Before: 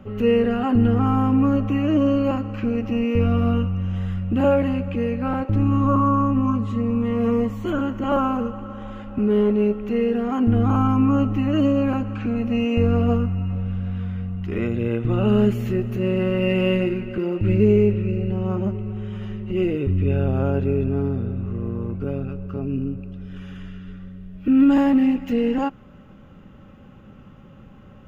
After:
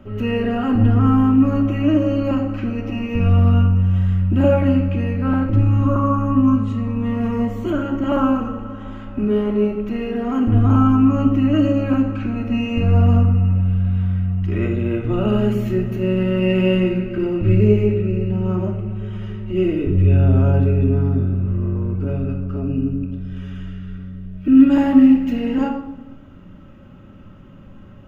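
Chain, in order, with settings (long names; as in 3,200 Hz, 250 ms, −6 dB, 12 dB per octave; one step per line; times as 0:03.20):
rectangular room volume 2,600 cubic metres, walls furnished, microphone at 2.8 metres
level −1 dB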